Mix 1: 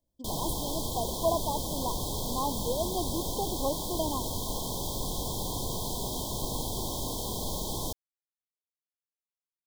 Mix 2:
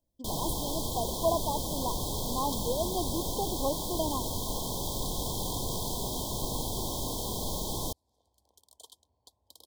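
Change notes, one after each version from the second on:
second sound: unmuted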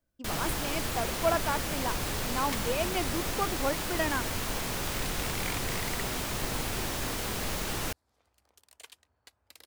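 master: remove linear-phase brick-wall band-stop 1,100–3,100 Hz

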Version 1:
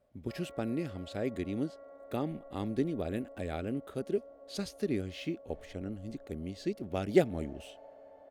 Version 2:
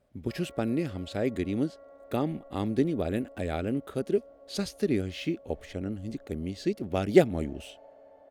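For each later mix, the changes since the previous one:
speech +5.5 dB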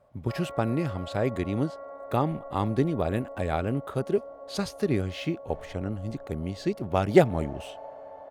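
background +6.5 dB
master: add graphic EQ with 10 bands 125 Hz +8 dB, 250 Hz −3 dB, 1,000 Hz +11 dB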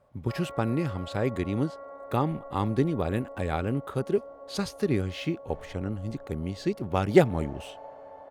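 master: add parametric band 650 Hz −6 dB 0.28 octaves

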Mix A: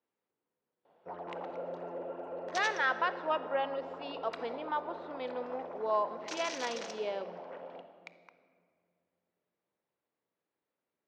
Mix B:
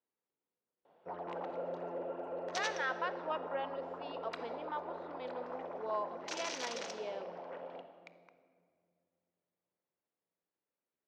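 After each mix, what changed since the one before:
speech −6.5 dB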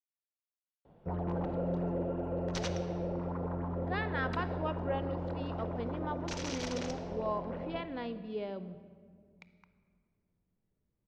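speech: entry +1.35 s
master: remove high-pass filter 550 Hz 12 dB per octave

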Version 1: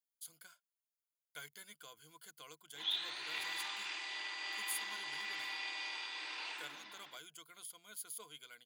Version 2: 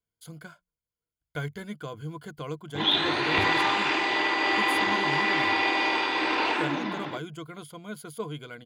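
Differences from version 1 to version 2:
background +6.5 dB
master: remove first difference

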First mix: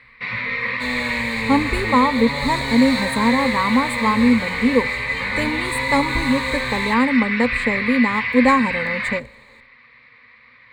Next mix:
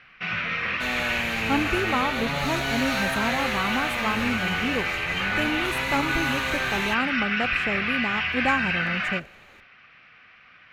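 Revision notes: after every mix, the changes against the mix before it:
speech −6.0 dB
master: remove EQ curve with evenly spaced ripples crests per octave 0.98, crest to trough 16 dB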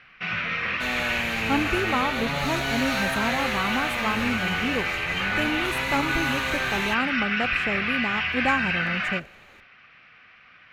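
nothing changed

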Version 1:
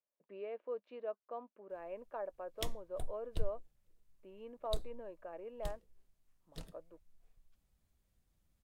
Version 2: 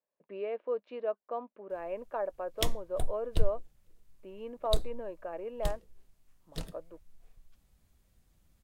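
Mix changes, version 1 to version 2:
speech +8.0 dB
background +9.5 dB

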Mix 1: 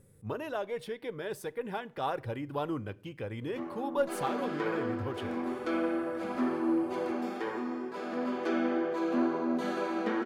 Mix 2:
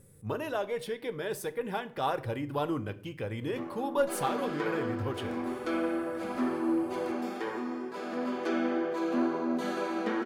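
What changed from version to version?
speech: send +9.0 dB
master: add high-shelf EQ 5,100 Hz +5.5 dB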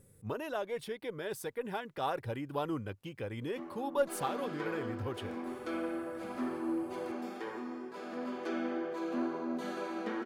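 speech: send off
background −6.0 dB

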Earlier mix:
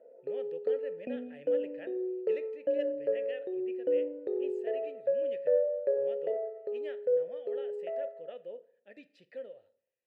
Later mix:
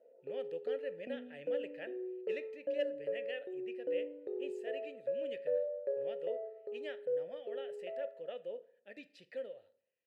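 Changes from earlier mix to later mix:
speech: add high-shelf EQ 2,600 Hz +7.5 dB
background −7.5 dB

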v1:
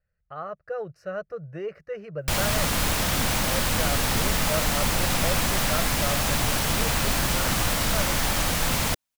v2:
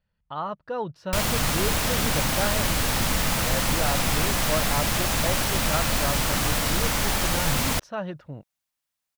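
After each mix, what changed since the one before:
speech: remove phaser with its sweep stopped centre 940 Hz, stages 6
background: entry −1.15 s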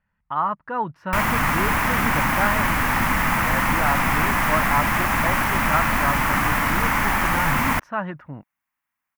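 master: add octave-band graphic EQ 250/500/1,000/2,000/4,000/8,000 Hz +6/−6/+10/+10/−11/−6 dB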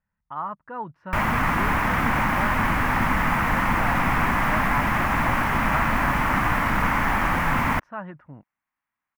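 speech −7.0 dB
master: add high-shelf EQ 3,700 Hz −12 dB

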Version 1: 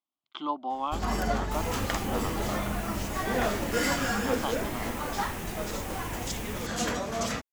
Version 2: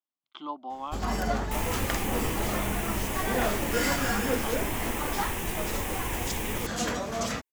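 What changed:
speech −5.0 dB
second sound +7.0 dB

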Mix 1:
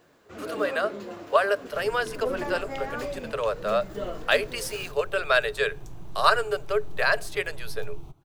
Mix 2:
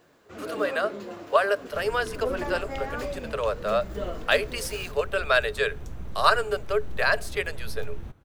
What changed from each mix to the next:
second sound: remove phaser with its sweep stopped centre 340 Hz, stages 8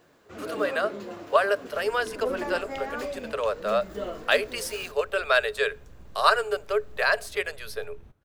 second sound −12.0 dB

